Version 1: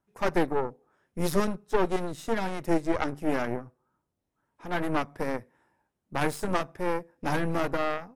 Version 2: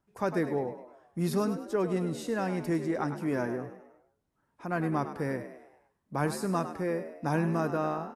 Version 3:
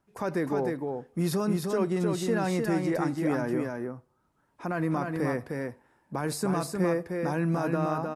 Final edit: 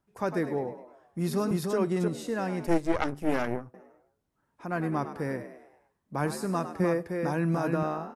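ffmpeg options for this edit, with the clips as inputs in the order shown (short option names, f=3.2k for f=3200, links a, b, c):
-filter_complex "[2:a]asplit=2[a][b];[1:a]asplit=4[c][d][e][f];[c]atrim=end=1.512[g];[a]atrim=start=1.508:end=2.082[h];[d]atrim=start=2.078:end=2.672[i];[0:a]atrim=start=2.668:end=3.742[j];[e]atrim=start=3.738:end=6.802[k];[b]atrim=start=6.798:end=7.832[l];[f]atrim=start=7.828[m];[g][h]acrossfade=d=0.004:c1=hsin:c2=hsin[n];[n][i]acrossfade=d=0.004:c1=hsin:c2=hsin[o];[o][j]acrossfade=d=0.004:c1=hsin:c2=hsin[p];[p][k]acrossfade=d=0.004:c1=hsin:c2=hsin[q];[q][l]acrossfade=d=0.004:c1=hsin:c2=hsin[r];[r][m]acrossfade=d=0.004:c1=hsin:c2=hsin"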